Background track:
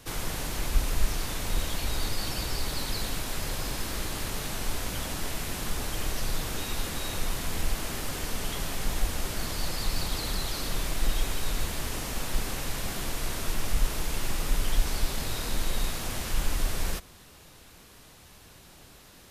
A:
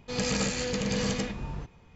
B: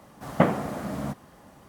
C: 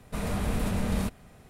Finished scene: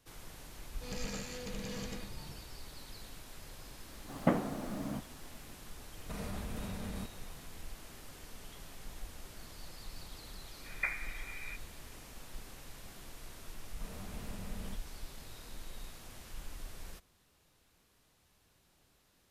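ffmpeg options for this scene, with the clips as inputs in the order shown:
-filter_complex "[2:a]asplit=2[s0][s1];[3:a]asplit=2[s2][s3];[0:a]volume=0.126[s4];[s0]equalizer=f=280:t=o:w=0.92:g=6[s5];[s2]acompressor=threshold=0.0224:ratio=6:attack=3.2:release=140:knee=1:detection=peak[s6];[s1]lowpass=f=2200:t=q:w=0.5098,lowpass=f=2200:t=q:w=0.6013,lowpass=f=2200:t=q:w=0.9,lowpass=f=2200:t=q:w=2.563,afreqshift=-2600[s7];[1:a]atrim=end=1.95,asetpts=PTS-STARTPTS,volume=0.211,afade=t=in:d=0.004:c=hsin,afade=t=out:st=1.946:d=0.004:c=hsin,adelay=730[s8];[s5]atrim=end=1.68,asetpts=PTS-STARTPTS,volume=0.299,afade=t=in:d=0.004:c=hsin,afade=t=out:st=1.676:d=0.004:c=hsin,adelay=3870[s9];[s6]atrim=end=1.49,asetpts=PTS-STARTPTS,volume=0.631,afade=t=in:d=0.004:c=hsin,afade=t=out:st=1.486:d=0.004:c=hsin,adelay=5970[s10];[s7]atrim=end=1.68,asetpts=PTS-STARTPTS,volume=0.168,afade=t=in:d=0.004:c=hsin,afade=t=out:st=1.676:d=0.004:c=hsin,adelay=10430[s11];[s3]atrim=end=1.49,asetpts=PTS-STARTPTS,volume=0.133,afade=t=in:d=0.004:c=hsin,afade=t=out:st=1.486:d=0.004:c=hsin,adelay=13670[s12];[s4][s8][s9][s10][s11][s12]amix=inputs=6:normalize=0"

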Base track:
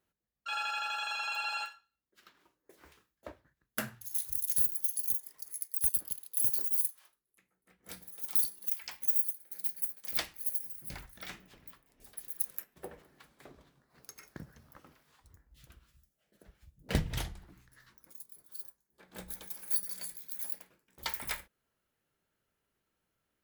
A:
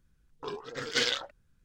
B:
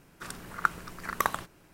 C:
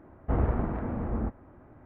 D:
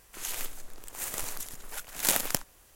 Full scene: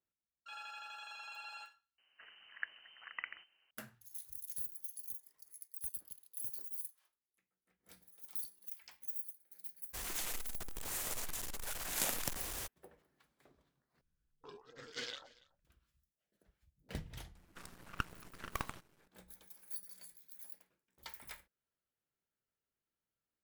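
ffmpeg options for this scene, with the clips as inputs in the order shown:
-filter_complex "[2:a]asplit=2[s0][s1];[0:a]volume=0.211[s2];[s0]lowpass=f=2600:t=q:w=0.5098,lowpass=f=2600:t=q:w=0.6013,lowpass=f=2600:t=q:w=0.9,lowpass=f=2600:t=q:w=2.563,afreqshift=-3100[s3];[4:a]aeval=exprs='val(0)+0.5*0.0596*sgn(val(0))':c=same[s4];[1:a]aecho=1:1:285:0.0794[s5];[s1]aeval=exprs='max(val(0),0)':c=same[s6];[s2]asplit=3[s7][s8][s9];[s7]atrim=end=1.984[s10];[s3]atrim=end=1.73,asetpts=PTS-STARTPTS,volume=0.158[s11];[s8]atrim=start=3.706:end=14.014[s12];[s5]atrim=end=1.64,asetpts=PTS-STARTPTS,volume=0.158[s13];[s9]atrim=start=15.646[s14];[s4]atrim=end=2.75,asetpts=PTS-STARTPTS,volume=0.237,afade=t=in:d=0.02,afade=t=out:st=2.73:d=0.02,adelay=9930[s15];[s6]atrim=end=1.73,asetpts=PTS-STARTPTS,volume=0.376,afade=t=in:d=0.004:c=hsin,afade=t=out:st=1.726:d=0.004:c=hsin,adelay=17350[s16];[s10][s11]acrossfade=d=0.004:c1=hsin:c2=hsin[s17];[s17][s12]acrossfade=d=0.004:c1=hsin:c2=hsin[s18];[s18][s13]acrossfade=d=0.004:c1=hsin:c2=hsin[s19];[s19][s14]acrossfade=d=0.004:c1=hsin:c2=hsin[s20];[s20][s15][s16]amix=inputs=3:normalize=0"

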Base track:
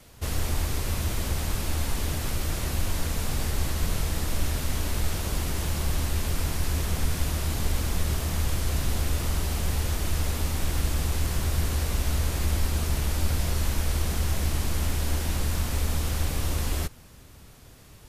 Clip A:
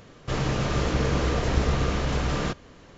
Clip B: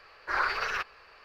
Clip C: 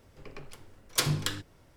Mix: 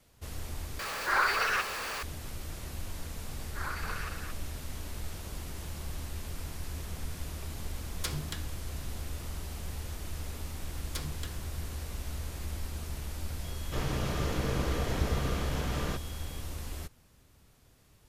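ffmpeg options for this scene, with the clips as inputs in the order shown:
-filter_complex "[2:a]asplit=2[s0][s1];[3:a]asplit=2[s2][s3];[0:a]volume=0.251[s4];[s0]aeval=exprs='val(0)+0.5*0.0282*sgn(val(0))':c=same[s5];[s1]aecho=1:1:224:0.631[s6];[1:a]aeval=exprs='val(0)+0.00501*sin(2*PI*3300*n/s)':c=same[s7];[s4]asplit=2[s8][s9];[s8]atrim=end=0.794[s10];[s5]atrim=end=1.24,asetpts=PTS-STARTPTS,volume=0.944[s11];[s9]atrim=start=2.026[s12];[s6]atrim=end=1.24,asetpts=PTS-STARTPTS,volume=0.282,afade=t=in:d=0.004:c=hsin,afade=t=out:st=1.236:d=0.004:c=hsin,adelay=3270[s13];[s2]atrim=end=1.76,asetpts=PTS-STARTPTS,volume=0.335,afade=t=in:d=0.004:c=hsin,afade=t=out:st=1.756:d=0.004:c=hsin,adelay=311346S[s14];[s3]atrim=end=1.76,asetpts=PTS-STARTPTS,volume=0.211,afade=t=in:d=0.004:c=hsin,afade=t=out:st=1.756:d=0.004:c=hsin,adelay=9970[s15];[s7]atrim=end=2.97,asetpts=PTS-STARTPTS,volume=0.422,afade=t=in:d=0.004:c=hsin,afade=t=out:st=2.966:d=0.004:c=hsin,adelay=13440[s16];[s10][s11]acrossfade=d=0.004:c1=hsin:c2=hsin[s17];[s17][s12]acrossfade=d=0.004:c1=hsin:c2=hsin[s18];[s18][s13][s14][s15][s16]amix=inputs=5:normalize=0"

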